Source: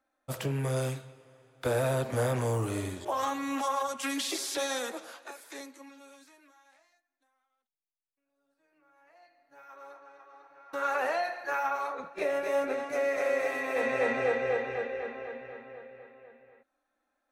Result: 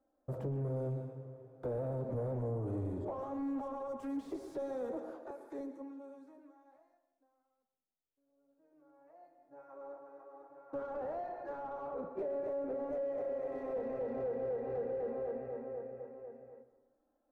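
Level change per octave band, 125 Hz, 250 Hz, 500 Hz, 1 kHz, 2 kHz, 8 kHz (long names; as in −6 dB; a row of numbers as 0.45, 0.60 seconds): −5.5 dB, −3.5 dB, −6.0 dB, −12.5 dB, −25.0 dB, below −30 dB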